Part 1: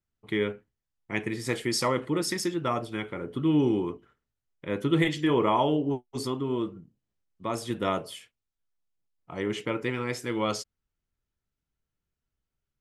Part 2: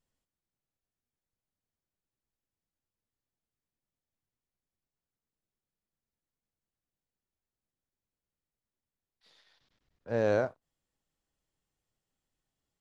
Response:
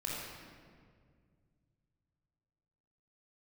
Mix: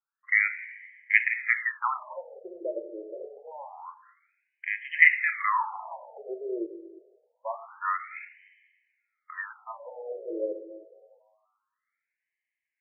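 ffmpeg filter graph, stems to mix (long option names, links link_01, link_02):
-filter_complex "[0:a]lowpass=frequency=2100:width_type=q:width=7.2,bandreject=frequency=60:width_type=h:width=6,bandreject=frequency=120:width_type=h:width=6,bandreject=frequency=180:width_type=h:width=6,bandreject=frequency=240:width_type=h:width=6,bandreject=frequency=300:width_type=h:width=6,bandreject=frequency=360:width_type=h:width=6,bandreject=frequency=420:width_type=h:width=6,bandreject=frequency=480:width_type=h:width=6,volume=-1dB,asplit=2[link_01][link_02];[link_02]volume=-12.5dB[link_03];[1:a]volume=-17dB[link_04];[2:a]atrim=start_sample=2205[link_05];[link_03][link_05]afir=irnorm=-1:irlink=0[link_06];[link_01][link_04][link_06]amix=inputs=3:normalize=0,afftfilt=real='re*between(b*sr/1024,450*pow(2300/450,0.5+0.5*sin(2*PI*0.26*pts/sr))/1.41,450*pow(2300/450,0.5+0.5*sin(2*PI*0.26*pts/sr))*1.41)':imag='im*between(b*sr/1024,450*pow(2300/450,0.5+0.5*sin(2*PI*0.26*pts/sr))/1.41,450*pow(2300/450,0.5+0.5*sin(2*PI*0.26*pts/sr))*1.41)':win_size=1024:overlap=0.75"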